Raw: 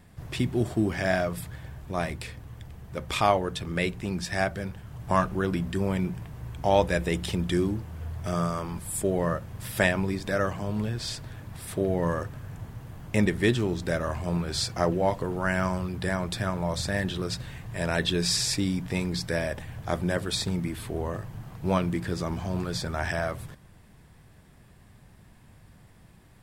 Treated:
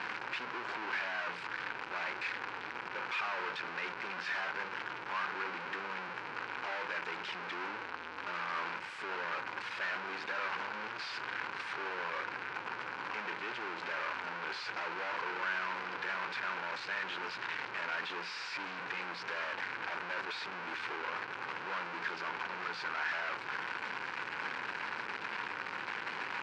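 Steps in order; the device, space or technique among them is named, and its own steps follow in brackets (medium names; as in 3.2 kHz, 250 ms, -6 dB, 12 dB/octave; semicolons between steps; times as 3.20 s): home computer beeper (one-bit comparator; cabinet simulation 560–4000 Hz, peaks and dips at 650 Hz -9 dB, 960 Hz +6 dB, 1.5 kHz +9 dB, 2.4 kHz +5 dB, 3.5 kHz -6 dB); trim -6.5 dB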